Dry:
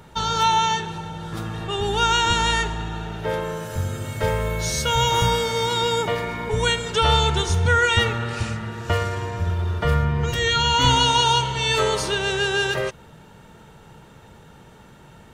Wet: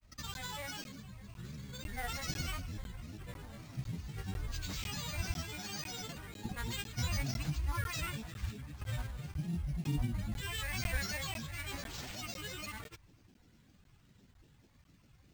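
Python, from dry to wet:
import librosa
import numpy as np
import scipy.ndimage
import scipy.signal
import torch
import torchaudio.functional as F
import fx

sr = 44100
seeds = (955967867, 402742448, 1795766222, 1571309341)

y = fx.cvsd(x, sr, bps=64000)
y = fx.tone_stack(y, sr, knobs='6-0-2')
y = fx.granulator(y, sr, seeds[0], grain_ms=100.0, per_s=20.0, spray_ms=100.0, spread_st=12)
y = np.repeat(y[::4], 4)[:len(y)]
y = fx.buffer_crackle(y, sr, first_s=0.34, period_s=0.5, block=512, kind='zero')
y = y * librosa.db_to_amplitude(1.0)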